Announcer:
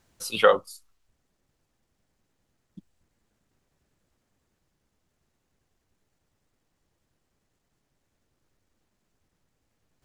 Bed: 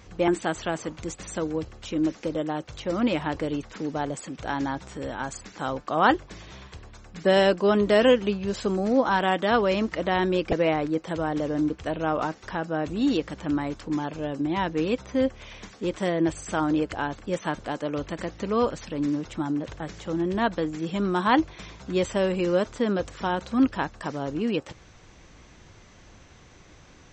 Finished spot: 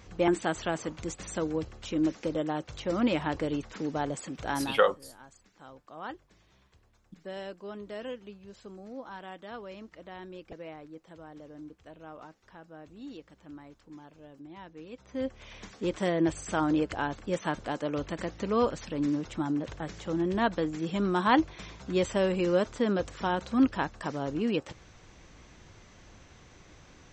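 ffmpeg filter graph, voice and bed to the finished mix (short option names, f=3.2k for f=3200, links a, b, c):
-filter_complex "[0:a]adelay=4350,volume=-5dB[a];[1:a]volume=15.5dB,afade=t=out:st=4.58:d=0.23:silence=0.125893,afade=t=in:st=14.91:d=0.84:silence=0.125893[b];[a][b]amix=inputs=2:normalize=0"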